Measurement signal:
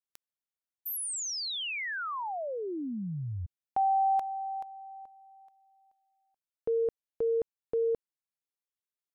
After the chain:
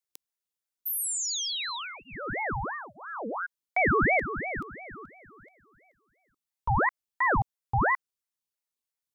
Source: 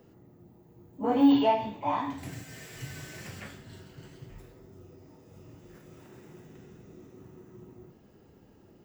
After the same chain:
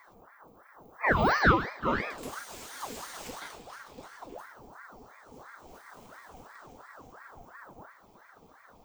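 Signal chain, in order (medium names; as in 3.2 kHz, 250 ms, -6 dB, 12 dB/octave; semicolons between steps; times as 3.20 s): static phaser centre 560 Hz, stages 4; ring modulator with a swept carrier 930 Hz, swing 65%, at 2.9 Hz; trim +7.5 dB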